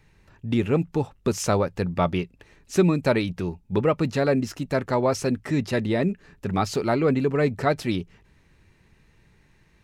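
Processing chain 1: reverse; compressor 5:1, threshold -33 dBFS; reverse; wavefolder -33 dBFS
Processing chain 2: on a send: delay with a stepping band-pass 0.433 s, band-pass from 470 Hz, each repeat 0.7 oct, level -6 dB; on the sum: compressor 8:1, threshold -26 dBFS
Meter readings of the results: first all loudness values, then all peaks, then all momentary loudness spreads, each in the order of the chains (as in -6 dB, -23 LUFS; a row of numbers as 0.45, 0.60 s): -40.5, -31.5 LUFS; -33.0, -16.0 dBFS; 21, 10 LU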